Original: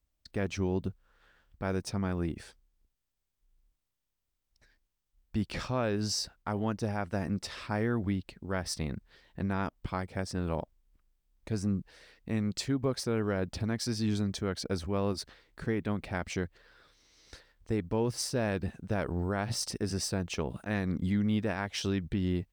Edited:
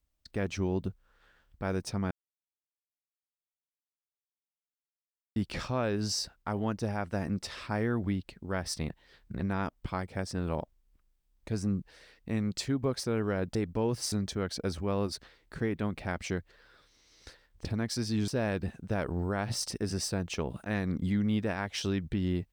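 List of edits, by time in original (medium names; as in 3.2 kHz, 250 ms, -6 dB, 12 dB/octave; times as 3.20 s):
2.11–5.36 s: mute
8.89–9.40 s: reverse
13.55–14.18 s: swap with 17.71–18.28 s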